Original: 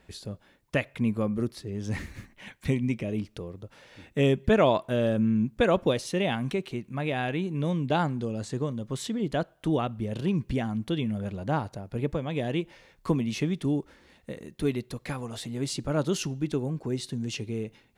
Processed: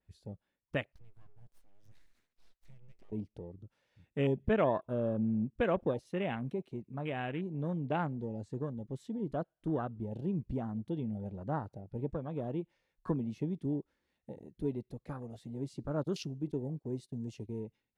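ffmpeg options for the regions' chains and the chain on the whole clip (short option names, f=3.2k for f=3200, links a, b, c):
-filter_complex "[0:a]asettb=1/sr,asplit=3[a][b][c];[a]atrim=end=0.924[d];[b]atrim=start=0.92:end=3.12,asetpts=PTS-STARTPTS,afade=t=in:d=0.004:c=qsin,afade=t=out:st=2.196:d=0.004:c=qsin,acompressor=threshold=-41dB:ratio=2:attack=3.2:release=140:knee=1:detection=peak,lowshelf=f=300:g=-9.5,aeval=exprs='abs(val(0))':c=same[e];[c]atrim=start=3.116[f];[d][e]acrossfade=d=0.004:c1=hsin:c2=qsin[g];[g][f]acrossfade=d=0.004:c1=qsin:c2=hsin,asettb=1/sr,asplit=3[h][i][j];[h]atrim=end=16.034[k];[i]atrim=start=16.03:end=17.6,asetpts=PTS-STARTPTS,afade=t=in:d=0.004:c=qsin,afade=t=out:st=1.566:d=0.004:c=qsin,agate=range=-13dB:threshold=-40dB:ratio=16:release=100:detection=peak,highshelf=f=6k:g=7[l];[j]atrim=start=17.596[m];[k][l]acrossfade=d=0.004:c1=hsin:c2=qsin[n];[n][m]acrossfade=d=0.004:c1=qsin:c2=hsin,afwtdn=0.0178,adynamicequalizer=threshold=0.002:dfrequency=6400:dqfactor=0.88:tfrequency=6400:tqfactor=0.88:attack=5:release=100:ratio=0.375:range=2:mode=cutabove:tftype=bell,volume=-7.5dB"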